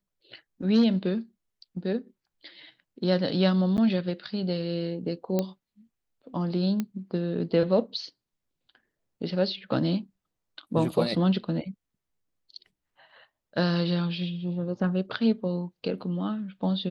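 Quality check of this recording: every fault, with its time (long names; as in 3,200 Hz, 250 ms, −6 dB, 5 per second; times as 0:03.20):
0:03.77–0:03.78: drop-out 9.5 ms
0:05.39: click −13 dBFS
0:06.80: click −16 dBFS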